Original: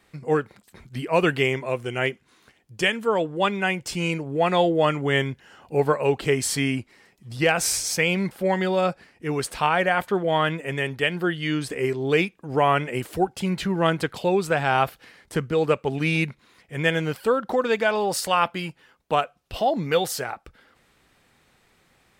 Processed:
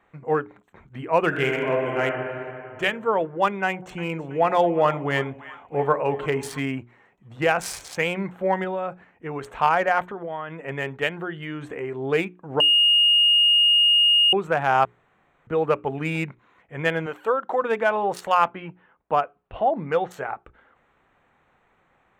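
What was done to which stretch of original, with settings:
0:01.27–0:02.04: thrown reverb, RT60 2.7 s, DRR −0.5 dB
0:03.65–0:06.60: echo with a time of its own for lows and highs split 910 Hz, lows 85 ms, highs 328 ms, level −15 dB
0:08.64–0:09.46: downward compressor 5 to 1, threshold −24 dBFS
0:10.10–0:10.61: downward compressor 8 to 1, threshold −28 dBFS
0:11.21–0:11.96: downward compressor 3 to 1, threshold −25 dBFS
0:12.60–0:14.33: beep over 2,850 Hz −11 dBFS
0:14.85–0:15.47: fill with room tone
0:17.06–0:17.62: bass and treble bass −15 dB, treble +5 dB
0:18.48–0:20.11: high-frequency loss of the air 220 metres
whole clip: adaptive Wiener filter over 9 samples; parametric band 970 Hz +7.5 dB 1.9 octaves; mains-hum notches 60/120/180/240/300/360/420 Hz; level −4 dB

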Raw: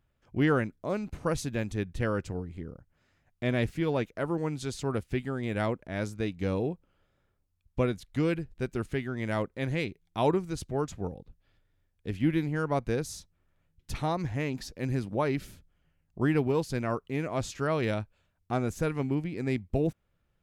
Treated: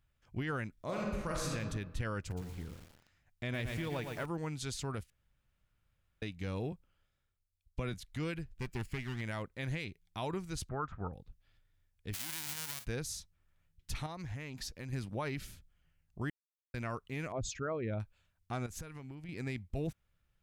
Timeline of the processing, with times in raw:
0:00.73–0:01.53: thrown reverb, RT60 1.2 s, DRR −3 dB
0:02.19–0:04.26: feedback echo at a low word length 116 ms, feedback 55%, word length 8 bits, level −8 dB
0:05.10–0:06.22: fill with room tone
0:06.72–0:07.94: multiband upward and downward expander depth 40%
0:08.47–0:09.21: lower of the sound and its delayed copy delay 0.4 ms
0:10.69–0:11.13: low-pass with resonance 1,300 Hz, resonance Q 5.4
0:12.13–0:12.84: spectral envelope flattened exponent 0.1
0:14.06–0:14.93: downward compressor, threshold −33 dBFS
0:16.30–0:16.74: silence
0:17.32–0:18.00: spectral envelope exaggerated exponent 2
0:18.66–0:19.29: downward compressor 10 to 1, threshold −36 dBFS
whole clip: parametric band 380 Hz −9.5 dB 2.8 octaves; brickwall limiter −27.5 dBFS

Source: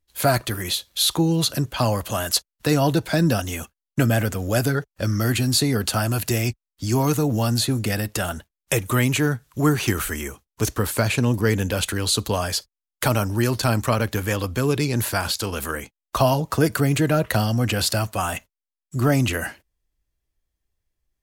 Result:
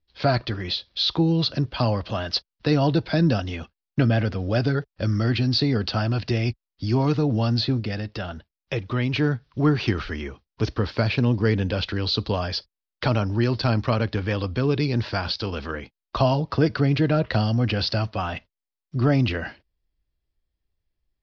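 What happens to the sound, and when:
0:07.80–0:09.13: clip gain −3.5 dB
whole clip: Butterworth low-pass 5,200 Hz 72 dB per octave; parametric band 1,400 Hz −4 dB 2.5 octaves

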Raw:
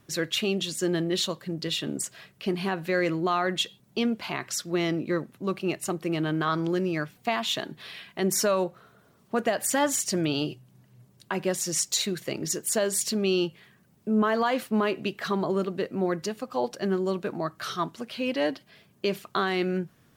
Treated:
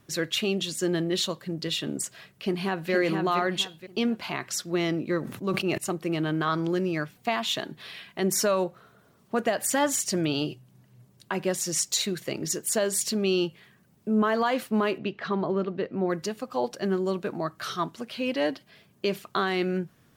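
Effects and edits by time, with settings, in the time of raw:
0:02.30–0:02.92: delay throw 470 ms, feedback 30%, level −4 dB
0:05.19–0:05.78: level that may fall only so fast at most 54 dB per second
0:14.98–0:16.10: high-frequency loss of the air 200 metres

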